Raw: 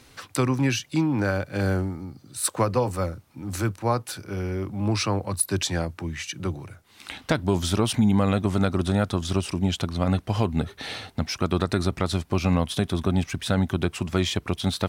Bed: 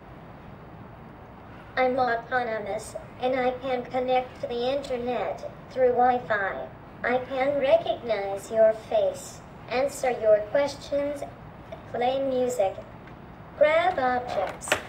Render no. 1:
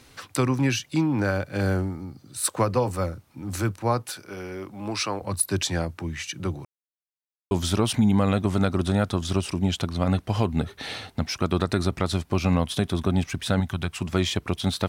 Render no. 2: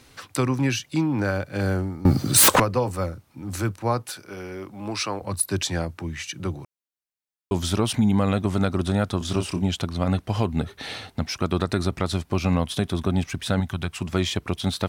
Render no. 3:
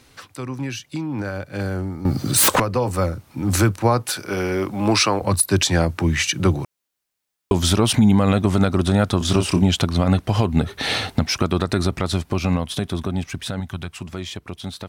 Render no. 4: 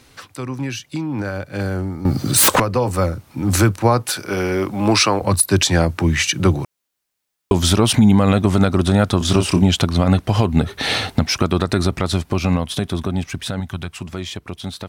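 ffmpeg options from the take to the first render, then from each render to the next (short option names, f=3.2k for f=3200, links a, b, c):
-filter_complex "[0:a]asettb=1/sr,asplit=3[a][b][c];[a]atrim=end=4.104[d];[b]atrim=start=4.1:end=5.22,asetpts=PTS-STARTPTS,afade=t=in:d=0.004:c=qsin,afade=t=out:st=1.116:d=0.004:c=qsin,highpass=f=450:p=1[e];[c]atrim=start=5.216[f];[d][e]acrossfade=d=0.004:c1=hsin:c2=qsin[g];[g][f]acrossfade=d=0.004:c1=qsin:c2=hsin,asettb=1/sr,asplit=3[h][i][j];[h]atrim=end=13.604[k];[i]atrim=start=13.6:end=14.02,asetpts=PTS-STARTPTS,afade=t=in:d=0.004:c=qsin,afade=t=out:st=0.416:d=0.004:c=qsin,equalizer=f=350:t=o:w=1.5:g=-10.5[l];[j]atrim=start=14.016[m];[k][l]acrossfade=d=0.004:c1=hsin:c2=qsin[n];[n][m]acrossfade=d=0.004:c1=qsin:c2=hsin,asplit=3[o][p][q];[o]atrim=end=6.65,asetpts=PTS-STARTPTS,afade=t=out:st=6.646:d=0.004:c=hsin[r];[p]atrim=start=6.65:end=7.51,asetpts=PTS-STARTPTS,volume=0[s];[q]atrim=start=7.51,asetpts=PTS-STARTPTS,afade=t=in:d=0.004:c=hsin[t];[r][s][t]concat=n=3:v=0:a=1"
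-filter_complex "[0:a]asettb=1/sr,asplit=3[a][b][c];[a]atrim=end=2.054[d];[b]atrim=start=2.05:end=2.6,asetpts=PTS-STARTPTS,afade=t=in:d=0.004:c=qsin,afade=t=out:st=0.546:d=0.004:c=qsin,aeval=exprs='0.299*sin(PI/2*10*val(0)/0.299)':c=same[e];[c]atrim=start=2.596[f];[d][e]acrossfade=d=0.004:c1=hsin:c2=qsin[g];[g][f]acrossfade=d=0.004:c1=qsin:c2=hsin,asettb=1/sr,asplit=3[h][i][j];[h]atrim=end=9.184[k];[i]atrim=start=9.18:end=9.62,asetpts=PTS-STARTPTS,afade=t=in:d=0.004:c=qsin,afade=t=out:st=0.436:d=0.004:c=qsin,asplit=2[l][m];[m]adelay=28,volume=-7dB[n];[l][n]amix=inputs=2:normalize=0,atrim=end_sample=19404[o];[j]atrim=start=9.616[p];[k][o]acrossfade=d=0.004:c1=hsin:c2=qsin[q];[q][p]acrossfade=d=0.004:c1=qsin:c2=hsin"
-af "alimiter=limit=-19dB:level=0:latency=1:release=373,dynaudnorm=f=250:g=21:m=13dB"
-af "volume=2.5dB"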